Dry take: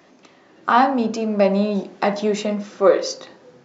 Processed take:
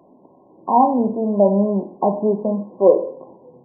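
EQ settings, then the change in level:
linear-phase brick-wall low-pass 1,100 Hz
+2.0 dB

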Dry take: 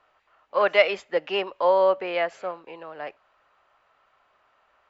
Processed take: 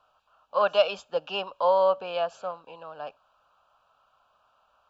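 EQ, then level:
Butterworth band-reject 2,000 Hz, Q 1.7
parametric band 360 Hz −14.5 dB 0.52 octaves
0.0 dB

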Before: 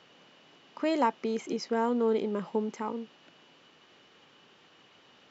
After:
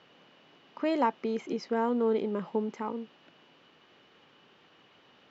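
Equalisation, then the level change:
high-frequency loss of the air 120 metres
0.0 dB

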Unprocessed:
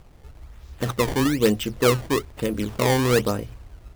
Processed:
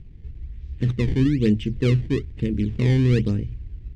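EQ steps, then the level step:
high-frequency loss of the air 95 metres
bass and treble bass +11 dB, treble −7 dB
flat-topped bell 890 Hz −15.5 dB
−3.0 dB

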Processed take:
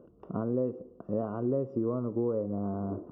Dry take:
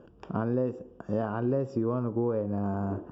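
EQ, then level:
Savitzky-Golay smoothing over 65 samples
low-shelf EQ 110 Hz −9.5 dB
parametric band 860 Hz −9 dB 0.44 octaves
0.0 dB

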